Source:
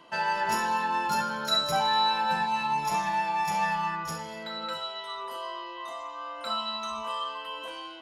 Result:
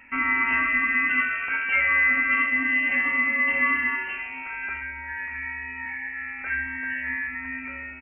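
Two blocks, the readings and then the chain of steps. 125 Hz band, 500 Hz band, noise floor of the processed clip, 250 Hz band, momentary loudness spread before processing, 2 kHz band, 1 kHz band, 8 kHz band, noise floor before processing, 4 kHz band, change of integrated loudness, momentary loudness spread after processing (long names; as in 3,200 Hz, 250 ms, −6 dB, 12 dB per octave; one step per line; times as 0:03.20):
can't be measured, −8.0 dB, −36 dBFS, +5.0 dB, 13 LU, +14.0 dB, −7.0 dB, below −40 dB, −40 dBFS, below −10 dB, +5.5 dB, 12 LU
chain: single-tap delay 75 ms −10 dB
voice inversion scrambler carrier 2,900 Hz
level +4 dB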